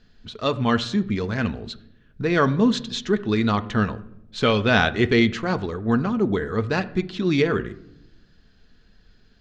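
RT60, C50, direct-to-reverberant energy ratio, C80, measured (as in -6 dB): 0.80 s, 17.5 dB, 10.0 dB, 20.0 dB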